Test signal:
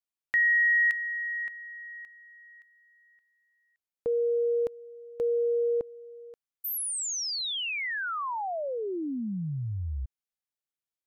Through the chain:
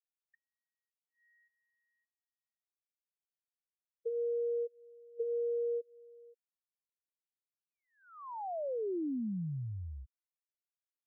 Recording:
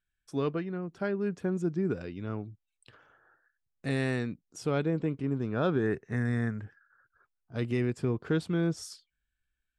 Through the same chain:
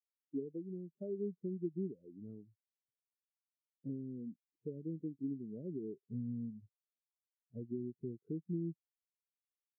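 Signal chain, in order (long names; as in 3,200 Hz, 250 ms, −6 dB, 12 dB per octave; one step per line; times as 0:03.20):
high-pass filter 230 Hz 6 dB per octave
treble cut that deepens with the level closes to 400 Hz, closed at −26.5 dBFS
Bessel low-pass filter 590 Hz, order 2
downward compressor 3 to 1, threshold −40 dBFS
every bin expanded away from the loudest bin 2.5 to 1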